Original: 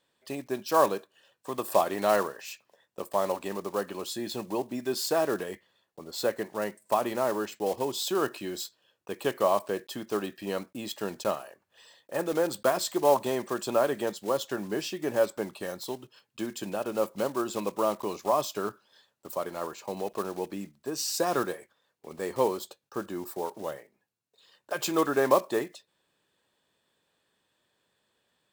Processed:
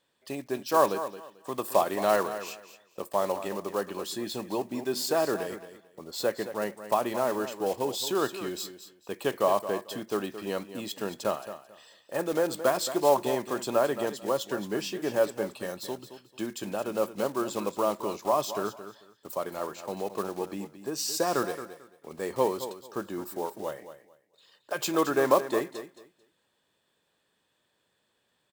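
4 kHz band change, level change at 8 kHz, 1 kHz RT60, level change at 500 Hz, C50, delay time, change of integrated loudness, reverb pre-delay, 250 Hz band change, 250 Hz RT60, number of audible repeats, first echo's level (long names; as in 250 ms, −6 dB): +0.5 dB, +0.5 dB, no reverb audible, +0.5 dB, no reverb audible, 221 ms, 0.0 dB, no reverb audible, +0.5 dB, no reverb audible, 2, −12.0 dB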